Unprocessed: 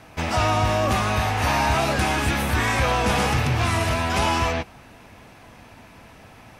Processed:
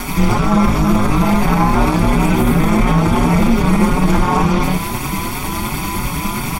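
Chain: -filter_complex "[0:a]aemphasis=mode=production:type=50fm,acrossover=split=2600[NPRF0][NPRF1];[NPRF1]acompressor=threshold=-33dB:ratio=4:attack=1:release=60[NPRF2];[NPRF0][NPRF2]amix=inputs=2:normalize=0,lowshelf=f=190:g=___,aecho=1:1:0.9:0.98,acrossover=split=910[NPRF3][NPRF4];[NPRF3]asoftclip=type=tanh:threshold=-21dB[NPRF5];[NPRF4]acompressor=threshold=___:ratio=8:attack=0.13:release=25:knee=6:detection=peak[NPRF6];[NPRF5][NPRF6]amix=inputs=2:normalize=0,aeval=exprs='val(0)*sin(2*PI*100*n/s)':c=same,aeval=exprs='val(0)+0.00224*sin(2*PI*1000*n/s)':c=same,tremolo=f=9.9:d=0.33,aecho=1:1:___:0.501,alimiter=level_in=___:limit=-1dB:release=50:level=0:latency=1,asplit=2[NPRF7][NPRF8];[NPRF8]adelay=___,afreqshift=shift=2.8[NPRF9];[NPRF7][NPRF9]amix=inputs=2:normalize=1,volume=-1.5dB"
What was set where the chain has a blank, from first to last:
6, -33dB, 146, 27dB, 5.1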